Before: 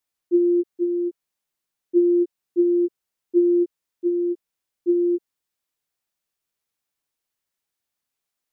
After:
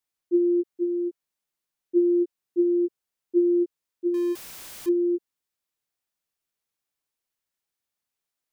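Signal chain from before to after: 4.14–4.89 zero-crossing step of -32 dBFS; gain -3 dB

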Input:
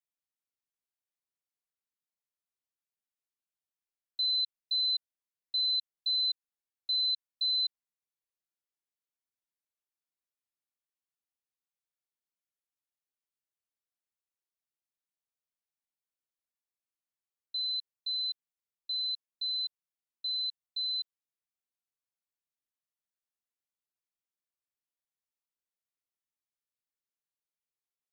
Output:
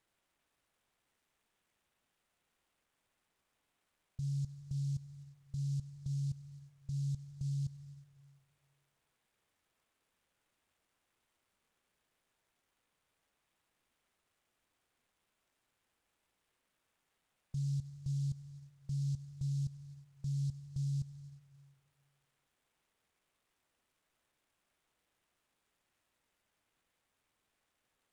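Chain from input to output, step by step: negative-ratio compressor -37 dBFS, ratio -1; limiter -35.5 dBFS, peak gain reduction 8 dB; reverb RT60 5.4 s, pre-delay 94 ms, DRR 11.5 dB; inverted band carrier 3900 Hz; noise-modulated delay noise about 5500 Hz, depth 0.057 ms; gain +13 dB

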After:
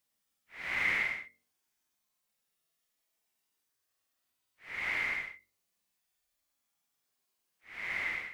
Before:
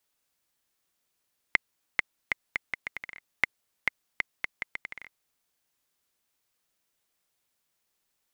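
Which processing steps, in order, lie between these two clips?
Paulstretch 17×, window 0.05 s, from 4.15; de-hum 45.87 Hz, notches 13; gain -3.5 dB

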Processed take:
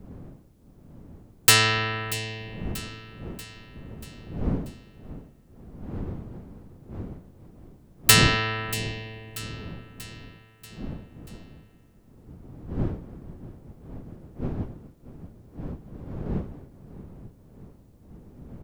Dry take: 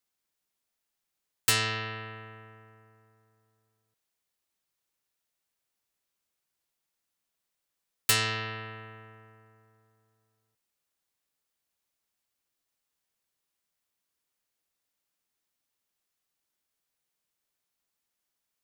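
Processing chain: wind noise 210 Hz -45 dBFS; feedback echo 0.636 s, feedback 54%, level -16 dB; gain +8.5 dB

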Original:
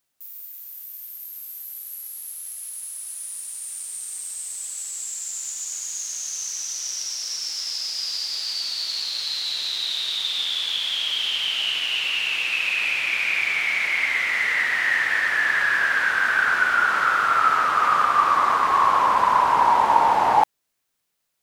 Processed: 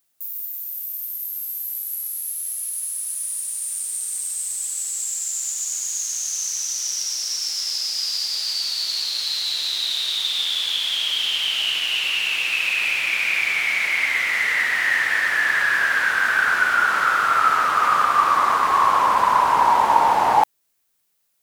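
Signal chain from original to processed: high shelf 7900 Hz +8.5 dB; gain +1 dB

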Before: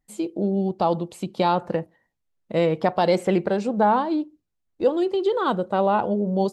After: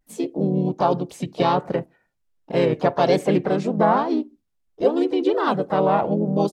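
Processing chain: vibrato 1.3 Hz 77 cents; harmoniser -4 st -4 dB, +4 st -16 dB, +5 st -13 dB

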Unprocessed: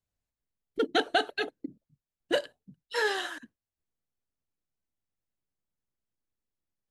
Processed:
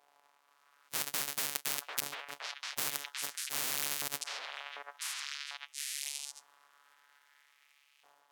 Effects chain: sample sorter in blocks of 256 samples; AGC gain up to 7.5 dB; wrapped overs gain 18.5 dB; LFO high-pass saw up 0.6 Hz 900–3200 Hz; varispeed -17%; on a send: delay with a stepping band-pass 0.745 s, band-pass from 1000 Hz, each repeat 1.4 oct, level -10 dB; on the sum: spectral compressor 10:1; gain +1.5 dB

